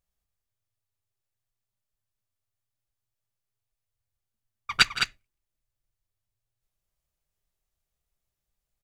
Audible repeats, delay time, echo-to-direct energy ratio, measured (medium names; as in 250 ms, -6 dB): 2, 165 ms, -6.0 dB